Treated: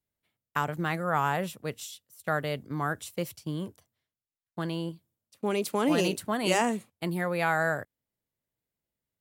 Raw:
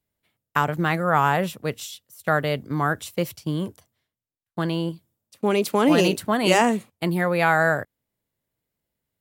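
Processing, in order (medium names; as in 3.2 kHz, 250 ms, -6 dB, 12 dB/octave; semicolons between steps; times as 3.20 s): dynamic bell 9 kHz, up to +4 dB, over -47 dBFS, Q 0.84; trim -7.5 dB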